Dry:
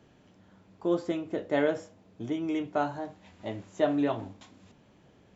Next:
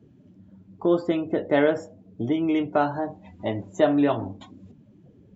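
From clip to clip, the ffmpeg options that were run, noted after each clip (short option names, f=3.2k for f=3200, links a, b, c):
-filter_complex "[0:a]afftdn=nr=21:nf=-51,asplit=2[a][b];[b]acompressor=threshold=-35dB:ratio=6,volume=1dB[c];[a][c]amix=inputs=2:normalize=0,volume=4dB"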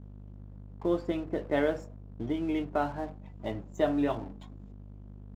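-af "aeval=exprs='val(0)+0.0178*(sin(2*PI*50*n/s)+sin(2*PI*2*50*n/s)/2+sin(2*PI*3*50*n/s)/3+sin(2*PI*4*50*n/s)/4+sin(2*PI*5*50*n/s)/5)':c=same,aeval=exprs='sgn(val(0))*max(abs(val(0))-0.00631,0)':c=same,volume=-7dB"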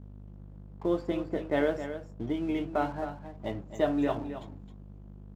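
-af "aecho=1:1:266:0.299"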